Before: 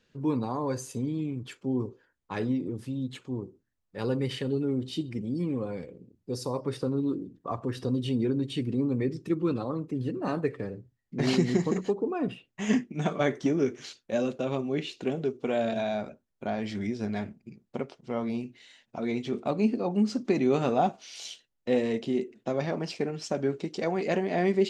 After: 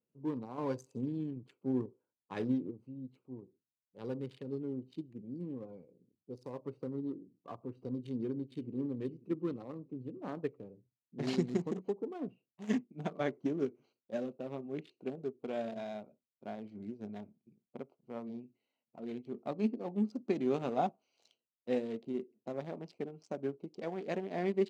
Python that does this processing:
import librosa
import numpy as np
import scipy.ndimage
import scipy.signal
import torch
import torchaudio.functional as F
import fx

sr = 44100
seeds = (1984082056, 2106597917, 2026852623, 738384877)

y = fx.echo_throw(x, sr, start_s=7.97, length_s=0.84, ms=540, feedback_pct=25, wet_db=-14.0)
y = fx.high_shelf(y, sr, hz=6000.0, db=-8.5, at=(13.08, 14.67))
y = fx.edit(y, sr, fx.clip_gain(start_s=0.58, length_s=2.13, db=4.0), tone=tone)
y = fx.wiener(y, sr, points=25)
y = scipy.signal.sosfilt(scipy.signal.butter(2, 130.0, 'highpass', fs=sr, output='sos'), y)
y = fx.upward_expand(y, sr, threshold_db=-42.0, expansion=1.5)
y = F.gain(torch.from_numpy(y), -5.5).numpy()